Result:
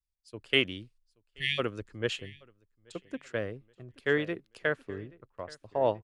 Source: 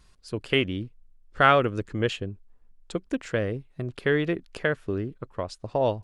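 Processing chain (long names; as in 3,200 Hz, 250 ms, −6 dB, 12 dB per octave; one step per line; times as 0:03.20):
low-shelf EQ 360 Hz −6.5 dB
time-frequency box erased 0:01.36–0:01.59, 200–1,700 Hz
on a send: repeating echo 830 ms, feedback 32%, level −15 dB
on the sum: multiband upward and downward expander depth 100%
level −6.5 dB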